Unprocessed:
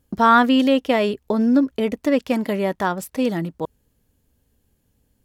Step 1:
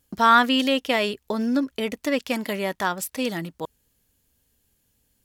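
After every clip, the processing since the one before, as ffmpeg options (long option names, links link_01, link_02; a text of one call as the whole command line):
ffmpeg -i in.wav -af "tiltshelf=frequency=1300:gain=-6,volume=-1dB" out.wav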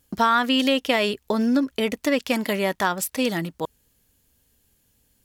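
ffmpeg -i in.wav -af "acompressor=threshold=-19dB:ratio=6,volume=3.5dB" out.wav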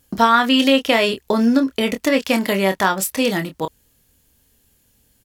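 ffmpeg -i in.wav -filter_complex "[0:a]asplit=2[link_01][link_02];[link_02]adelay=26,volume=-8dB[link_03];[link_01][link_03]amix=inputs=2:normalize=0,volume=4.5dB" out.wav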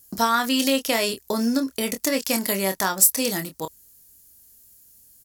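ffmpeg -i in.wav -af "aexciter=amount=5.4:drive=3.4:freq=4500,volume=-7dB" out.wav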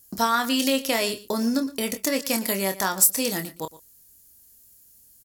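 ffmpeg -i in.wav -af "aecho=1:1:116:0.126,volume=-1.5dB" out.wav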